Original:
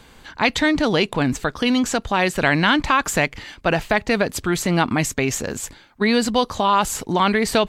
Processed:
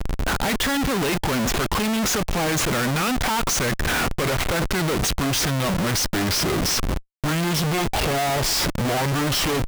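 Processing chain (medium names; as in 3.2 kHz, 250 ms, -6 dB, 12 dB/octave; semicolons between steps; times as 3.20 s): gliding tape speed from 93% -> 66%; valve stage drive 25 dB, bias 0.3; Schmitt trigger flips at -40.5 dBFS; trim +7.5 dB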